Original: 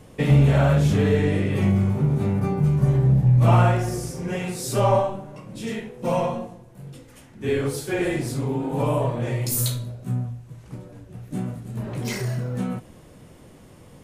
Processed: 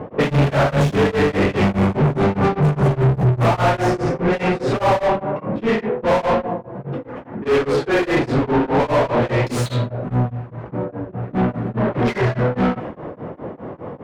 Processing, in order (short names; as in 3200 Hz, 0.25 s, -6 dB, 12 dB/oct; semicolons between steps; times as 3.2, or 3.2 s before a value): low-pass opened by the level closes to 1000 Hz, open at -15 dBFS; overdrive pedal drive 35 dB, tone 1200 Hz, clips at -6.5 dBFS; beating tremolo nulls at 4.9 Hz